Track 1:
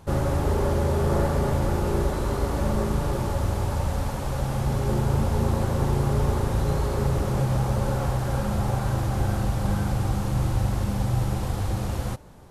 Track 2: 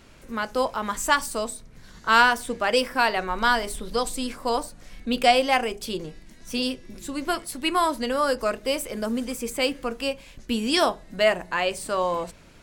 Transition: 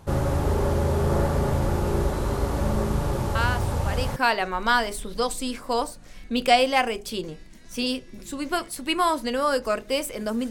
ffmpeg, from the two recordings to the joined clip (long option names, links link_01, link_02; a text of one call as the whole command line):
ffmpeg -i cue0.wav -i cue1.wav -filter_complex "[1:a]asplit=2[link_01][link_02];[0:a]apad=whole_dur=10.5,atrim=end=10.5,atrim=end=4.162[link_03];[link_02]atrim=start=2.918:end=9.26[link_04];[link_01]atrim=start=2.11:end=2.92,asetpts=PTS-STARTPTS,volume=-9.5dB,afade=type=in:duration=0.004:curve=hsin,afade=type=out:start_time=0.806:duration=0.004:curve=hsin,adelay=3350[link_05];[link_03][link_04]acrossfade=duration=0.004:curve1=hsin:curve2=hsin[link_06];[link_06][link_05]amix=inputs=2:normalize=0" out.wav